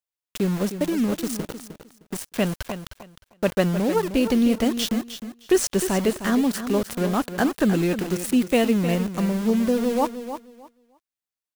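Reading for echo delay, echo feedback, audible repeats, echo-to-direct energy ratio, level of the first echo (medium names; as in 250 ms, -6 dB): 308 ms, 20%, 2, -10.5 dB, -10.5 dB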